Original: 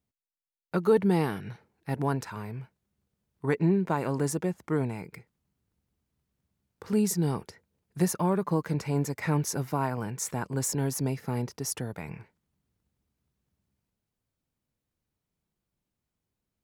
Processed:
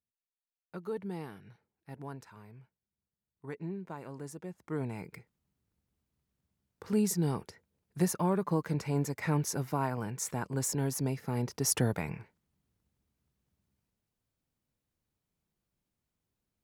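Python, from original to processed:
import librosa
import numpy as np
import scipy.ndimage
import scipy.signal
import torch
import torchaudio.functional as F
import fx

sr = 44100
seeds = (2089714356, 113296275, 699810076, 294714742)

y = fx.gain(x, sr, db=fx.line((4.38, -15.0), (5.0, -3.0), (11.32, -3.0), (11.87, 7.0), (12.19, -1.0)))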